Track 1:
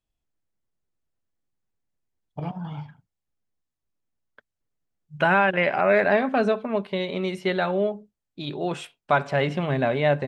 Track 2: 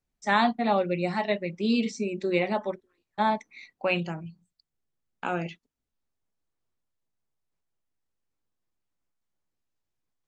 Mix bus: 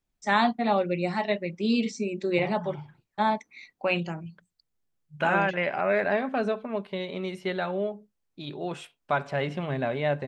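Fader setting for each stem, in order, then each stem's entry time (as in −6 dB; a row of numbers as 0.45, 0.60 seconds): −5.5, 0.0 decibels; 0.00, 0.00 seconds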